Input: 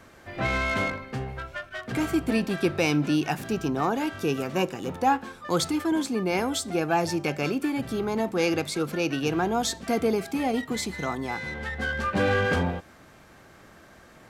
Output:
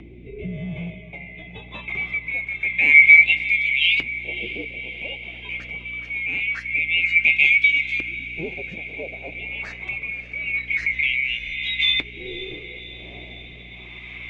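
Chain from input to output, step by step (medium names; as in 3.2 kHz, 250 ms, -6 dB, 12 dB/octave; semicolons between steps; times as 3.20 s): split-band scrambler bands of 2 kHz; resonant high shelf 1.7 kHz +7.5 dB, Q 3; LFO low-pass saw up 0.25 Hz 310–4100 Hz; flange 0.38 Hz, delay 3.1 ms, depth 4.7 ms, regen -57%; upward compressor, threshold -19 dBFS; hum 60 Hz, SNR 22 dB; rotary cabinet horn 0.9 Hz; on a send: echo that smears into a reverb 574 ms, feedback 65%, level -15.5 dB; on the sum: trim -2.5 dB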